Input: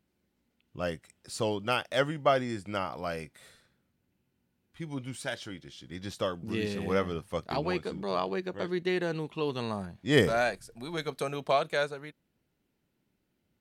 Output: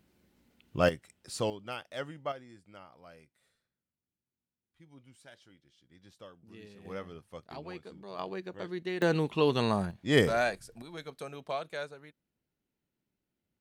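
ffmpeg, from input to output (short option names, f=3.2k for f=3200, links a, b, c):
-af "asetnsamples=n=441:p=0,asendcmd='0.89 volume volume -1dB;1.5 volume volume -11dB;2.32 volume volume -19dB;6.85 volume volume -12.5dB;8.19 volume volume -6dB;9.02 volume volume 5.5dB;9.91 volume volume -1dB;10.82 volume volume -9dB',volume=8dB"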